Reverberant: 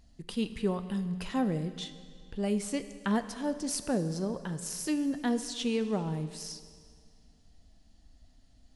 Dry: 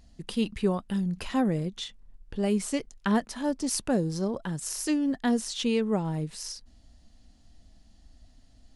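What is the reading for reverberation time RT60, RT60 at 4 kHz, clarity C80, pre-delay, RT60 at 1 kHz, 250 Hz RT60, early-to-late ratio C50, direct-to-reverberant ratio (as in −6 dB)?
2.1 s, 1.9 s, 13.0 dB, 17 ms, 2.1 s, 2.1 s, 12.0 dB, 10.5 dB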